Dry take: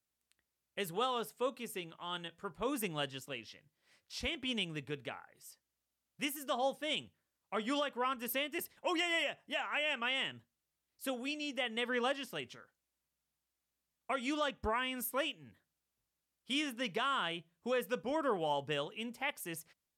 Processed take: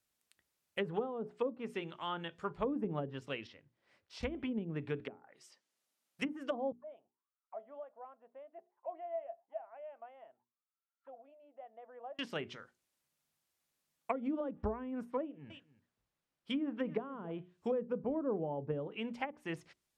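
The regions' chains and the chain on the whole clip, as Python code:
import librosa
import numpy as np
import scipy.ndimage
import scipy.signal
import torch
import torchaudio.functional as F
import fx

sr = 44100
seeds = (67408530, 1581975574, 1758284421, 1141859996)

y = fx.chain(x, sr, fx.lowpass(hz=1200.0, slope=6),
    fx.peak_eq(hz=170.0, db=-6.5, octaves=0.48), at=(3.47, 4.23))
y = fx.chain(y, sr, fx.highpass(hz=220.0, slope=12),
    fx.env_lowpass_down(base_hz=310.0, full_db=-42.0), at=(5.0, 6.22))
y = fx.chain(y, sr, fx.lowpass(hz=1800.0, slope=12),
    fx.auto_wah(base_hz=670.0, top_hz=1400.0, q=16.0, full_db=-40.0, direction='down'), at=(6.72, 12.19))
y = fx.chain(y, sr, fx.lowpass(hz=2100.0, slope=6),
    fx.echo_single(ms=280, db=-17.0), at=(15.22, 17.31))
y = fx.hum_notches(y, sr, base_hz=60, count=7)
y = fx.env_lowpass_down(y, sr, base_hz=400.0, full_db=-33.0)
y = F.gain(torch.from_numpy(y), 4.5).numpy()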